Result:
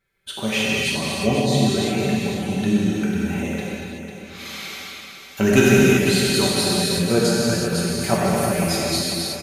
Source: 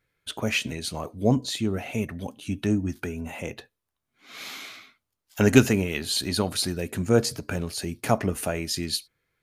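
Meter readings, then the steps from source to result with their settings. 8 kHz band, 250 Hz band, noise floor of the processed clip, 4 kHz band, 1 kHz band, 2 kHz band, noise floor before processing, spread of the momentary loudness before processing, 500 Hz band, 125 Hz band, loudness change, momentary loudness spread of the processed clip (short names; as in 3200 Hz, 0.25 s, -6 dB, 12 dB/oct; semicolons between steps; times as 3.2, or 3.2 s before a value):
+7.5 dB, +6.5 dB, -41 dBFS, +7.5 dB, +7.0 dB, +8.0 dB, -83 dBFS, 15 LU, +7.0 dB, +5.0 dB, +6.5 dB, 17 LU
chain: comb 5.2 ms, depth 55%; feedback echo 0.498 s, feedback 38%, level -8 dB; non-linear reverb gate 0.4 s flat, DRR -6 dB; gain -1.5 dB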